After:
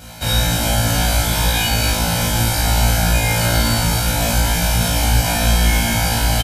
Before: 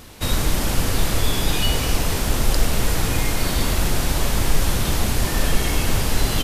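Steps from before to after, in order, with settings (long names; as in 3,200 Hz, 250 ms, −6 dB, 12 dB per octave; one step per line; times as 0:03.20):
high-pass filter 59 Hz
comb filter 1.3 ms, depth 76%
brickwall limiter −12.5 dBFS, peak gain reduction 4.5 dB
on a send: flutter between parallel walls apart 3 metres, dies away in 0.78 s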